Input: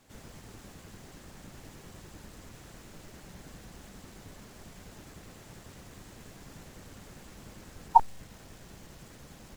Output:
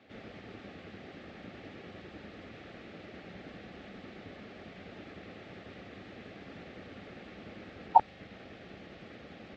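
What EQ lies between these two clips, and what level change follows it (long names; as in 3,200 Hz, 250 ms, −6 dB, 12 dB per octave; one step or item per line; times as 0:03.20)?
loudspeaker in its box 110–3,300 Hz, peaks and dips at 140 Hz −9 dB, 930 Hz −5 dB, 1,500 Hz −5 dB, 3,000 Hz −3 dB
low-shelf EQ 320 Hz −4.5 dB
parametric band 1,000 Hz −13 dB 0.2 octaves
+7.5 dB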